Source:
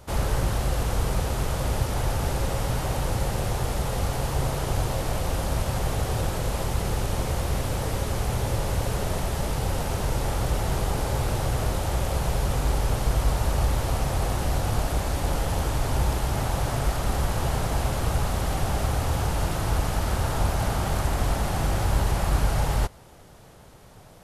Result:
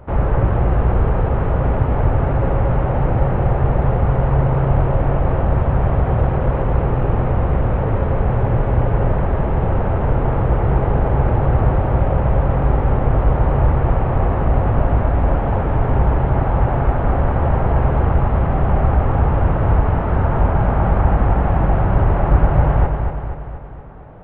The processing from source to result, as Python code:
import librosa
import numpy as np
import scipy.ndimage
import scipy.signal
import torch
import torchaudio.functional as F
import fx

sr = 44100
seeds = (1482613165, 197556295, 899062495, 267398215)

y = scipy.ndimage.gaussian_filter1d(x, 4.8, mode='constant')
y = fx.echo_feedback(y, sr, ms=238, feedback_pct=55, wet_db=-6.0)
y = fx.rev_gated(y, sr, seeds[0], gate_ms=180, shape='rising', drr_db=11.5)
y = F.gain(torch.from_numpy(y), 8.5).numpy()